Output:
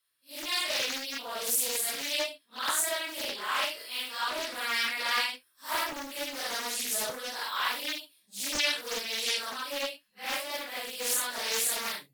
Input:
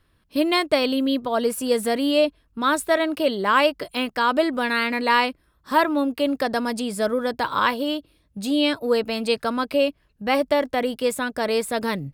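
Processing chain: phase randomisation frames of 200 ms; level rider; differentiator; loudspeaker Doppler distortion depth 0.71 ms; trim -2 dB

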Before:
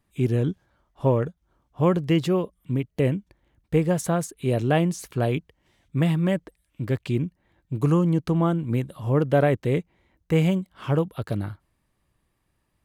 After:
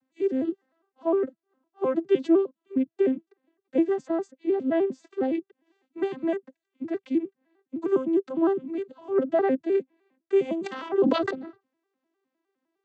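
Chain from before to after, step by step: vocoder on a broken chord major triad, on C4, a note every 102 ms; 3.96–5.07 s: treble shelf 3.5 kHz -10 dB; 10.56–11.31 s: decay stretcher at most 32 dB/s; trim -2 dB

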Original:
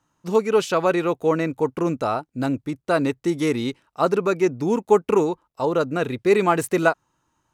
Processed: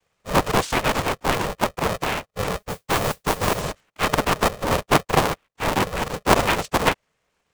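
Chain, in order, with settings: noise-vocoded speech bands 4; 2.58–3.62 s: modulation noise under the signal 13 dB; polarity switched at an audio rate 310 Hz; trim -1 dB

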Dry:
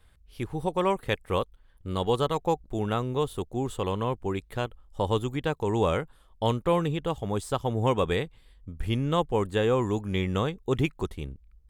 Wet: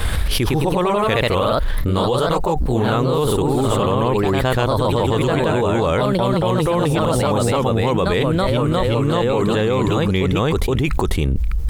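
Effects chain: ever faster or slower copies 129 ms, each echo +1 st, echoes 3; level flattener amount 100%

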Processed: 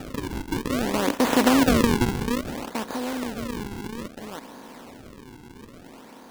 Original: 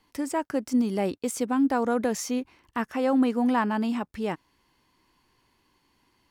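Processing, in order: spectral levelling over time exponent 0.2; Doppler pass-by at 1.50 s, 11 m/s, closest 4.2 m; decimation with a swept rate 41×, swing 160% 0.6 Hz

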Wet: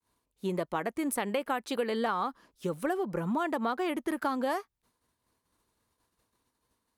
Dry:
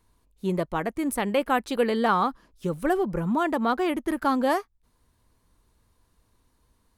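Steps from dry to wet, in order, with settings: expander -59 dBFS; high-pass 270 Hz 6 dB/octave; compression 6:1, threshold -27 dBFS, peak gain reduction 9 dB

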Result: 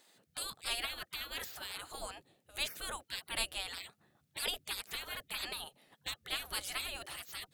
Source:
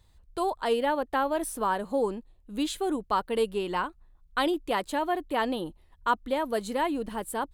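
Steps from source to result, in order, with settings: peaking EQ 1 kHz -12 dB 0.32 oct; spectral gate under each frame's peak -25 dB weak; trim +7.5 dB

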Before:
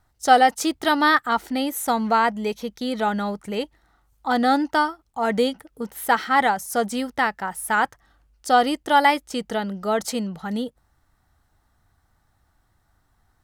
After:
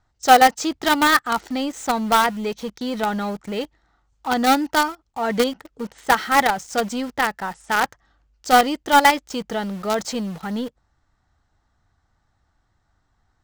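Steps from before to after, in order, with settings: steep low-pass 7.7 kHz 48 dB/octave; in parallel at -9.5 dB: companded quantiser 2-bit; on the sum: trim -2 dB

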